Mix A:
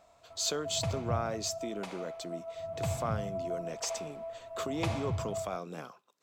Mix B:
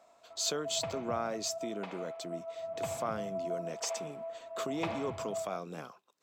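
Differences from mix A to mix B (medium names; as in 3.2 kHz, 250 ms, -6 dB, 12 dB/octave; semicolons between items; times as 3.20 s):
background: add three-band isolator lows -18 dB, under 210 Hz, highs -22 dB, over 3.7 kHz; reverb: off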